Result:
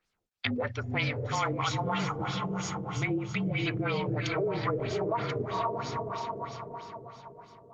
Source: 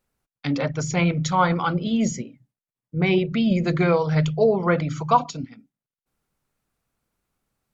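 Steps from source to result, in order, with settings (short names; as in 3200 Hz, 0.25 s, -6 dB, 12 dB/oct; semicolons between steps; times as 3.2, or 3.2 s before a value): diffused feedback echo 0.508 s, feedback 42%, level -3 dB; frequency shift -36 Hz; 1.33–3.55 high shelf 3900 Hz -> 5500 Hz +5 dB; LFO low-pass sine 3.1 Hz 420–5500 Hz; limiter -10 dBFS, peak gain reduction 10 dB; compressor 2:1, threshold -29 dBFS, peak gain reduction 8.5 dB; tilt shelf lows -5 dB, about 1500 Hz; Opus 24 kbps 48000 Hz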